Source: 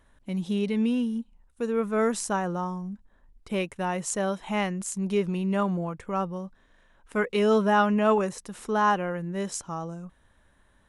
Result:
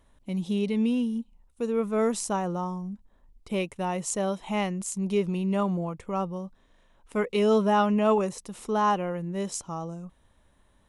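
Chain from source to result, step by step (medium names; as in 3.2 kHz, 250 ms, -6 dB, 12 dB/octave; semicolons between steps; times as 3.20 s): peaking EQ 1.6 kHz -8.5 dB 0.49 oct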